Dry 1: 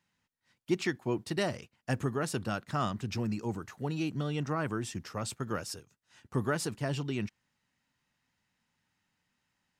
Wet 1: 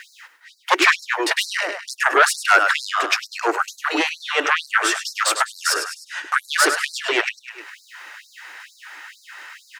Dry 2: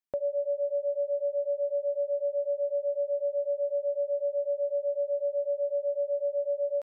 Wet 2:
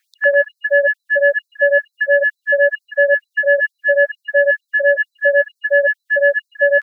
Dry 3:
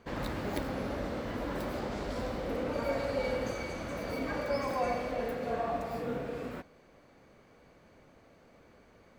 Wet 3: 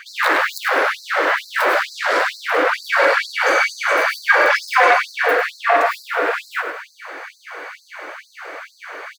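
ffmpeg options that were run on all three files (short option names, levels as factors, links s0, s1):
-filter_complex "[0:a]aecho=1:1:102|204|306|408:0.316|0.12|0.0457|0.0174,asplit=2[s0][s1];[s1]acompressor=threshold=0.00631:ratio=5,volume=0.841[s2];[s0][s2]amix=inputs=2:normalize=0,aeval=exprs='0.168*sin(PI/2*3.16*val(0)/0.168)':c=same,equalizer=f=1600:t=o:w=1.5:g=13.5,areverse,acompressor=mode=upward:threshold=0.0355:ratio=2.5,areverse,afftfilt=real='re*gte(b*sr/1024,270*pow(4000/270,0.5+0.5*sin(2*PI*2.2*pts/sr)))':imag='im*gte(b*sr/1024,270*pow(4000/270,0.5+0.5*sin(2*PI*2.2*pts/sr)))':win_size=1024:overlap=0.75,volume=1.26"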